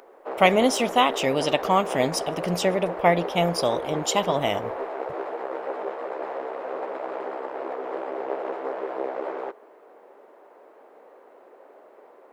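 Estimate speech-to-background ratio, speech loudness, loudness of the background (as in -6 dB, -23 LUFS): 8.5 dB, -23.5 LUFS, -32.0 LUFS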